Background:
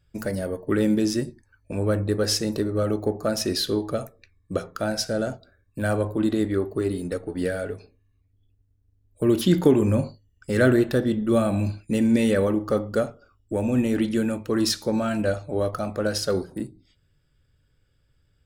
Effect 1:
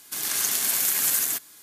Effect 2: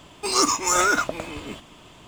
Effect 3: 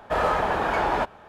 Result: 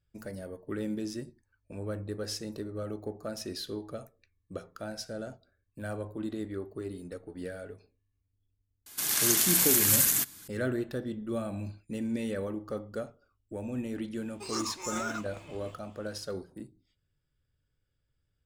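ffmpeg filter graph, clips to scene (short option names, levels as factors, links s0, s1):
-filter_complex "[0:a]volume=0.224[s0];[1:a]asubboost=boost=10:cutoff=230,atrim=end=1.62,asetpts=PTS-STARTPTS,volume=0.944,afade=t=in:d=0.004:c=hsin,afade=t=out:st=1.616:d=0.004:c=hsin,adelay=8860[s1];[2:a]atrim=end=2.07,asetpts=PTS-STARTPTS,volume=0.158,afade=t=in:d=0.004:c=hsin,afade=t=out:st=2.066:d=0.004:c=hsin,adelay=14170[s2];[s0][s1][s2]amix=inputs=3:normalize=0"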